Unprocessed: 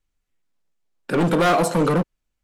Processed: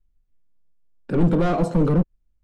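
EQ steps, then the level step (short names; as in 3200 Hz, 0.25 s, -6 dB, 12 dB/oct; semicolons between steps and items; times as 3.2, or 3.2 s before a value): LPF 7700 Hz 12 dB/oct; tilt shelf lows +7 dB, about 670 Hz; low shelf 100 Hz +11.5 dB; -6.0 dB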